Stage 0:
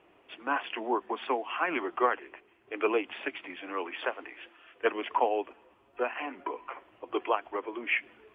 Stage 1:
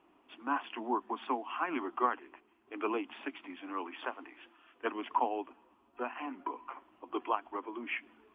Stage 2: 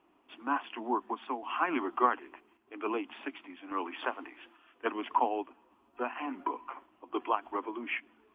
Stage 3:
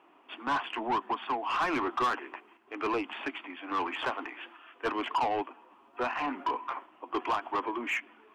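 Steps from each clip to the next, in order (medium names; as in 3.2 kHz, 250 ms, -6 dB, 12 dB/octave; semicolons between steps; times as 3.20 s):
graphic EQ 125/250/500/1000/2000 Hz -9/+11/-8/+6/-5 dB; trim -5.5 dB
random-step tremolo; trim +4.5 dB
overdrive pedal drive 25 dB, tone 2.6 kHz, clips at -12 dBFS; trim -7.5 dB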